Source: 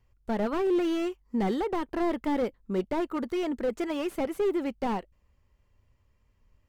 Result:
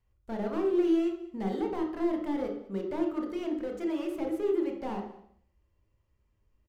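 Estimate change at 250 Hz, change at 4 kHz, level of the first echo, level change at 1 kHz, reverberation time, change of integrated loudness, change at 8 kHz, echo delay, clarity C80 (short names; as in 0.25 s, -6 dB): -0.5 dB, -7.0 dB, -20.0 dB, -6.0 dB, 0.65 s, -1.5 dB, n/a, 0.202 s, 9.0 dB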